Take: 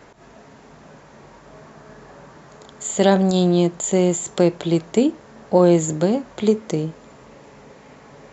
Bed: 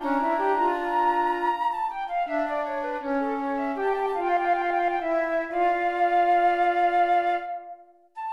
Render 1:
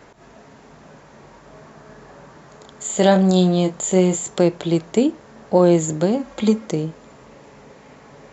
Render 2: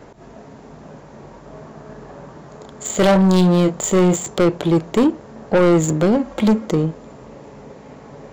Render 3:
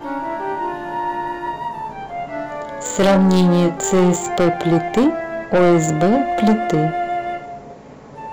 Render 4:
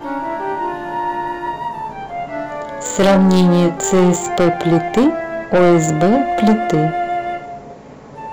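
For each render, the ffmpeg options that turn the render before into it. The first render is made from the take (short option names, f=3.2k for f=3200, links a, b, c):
-filter_complex "[0:a]asettb=1/sr,asplit=3[a][b][c];[a]atrim=end=2.874[d];[b]atrim=start=2.87:end=4.28,asetpts=PTS-STARTPTS,afade=t=in:d=0.004:c=qsin,afade=t=out:st=1.406:d=0.004:c=qsin,asplit=2[e][f];[f]adelay=27,volume=-7dB[g];[e][g]amix=inputs=2:normalize=0,atrim=end_sample=62181[h];[c]atrim=start=4.276[i];[d][h]acrossfade=d=0.004:c1=hsin:c2=qsin[j];[j][i]acrossfade=d=0.004:c1=qsin:c2=hsin,asettb=1/sr,asplit=3[k][l][m];[k]atrim=end=6.194[n];[l]atrim=start=6.19:end=6.66,asetpts=PTS-STARTPTS,afade=t=in:d=0.004:c=qsin,afade=t=out:st=0.466:d=0.004:c=qsin,aecho=1:1:3.7:0.8,atrim=end_sample=20727[o];[m]atrim=start=6.656[p];[n][o]acrossfade=d=0.004:c1=hsin:c2=qsin[q];[q][p]acrossfade=d=0.004:c1=qsin:c2=hsin"
-filter_complex "[0:a]asplit=2[a][b];[b]adynamicsmooth=sensitivity=5.5:basefreq=730,volume=2dB[c];[a][c]amix=inputs=2:normalize=0,asoftclip=type=tanh:threshold=-9.5dB"
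-filter_complex "[1:a]volume=-0.5dB[a];[0:a][a]amix=inputs=2:normalize=0"
-af "volume=2dB"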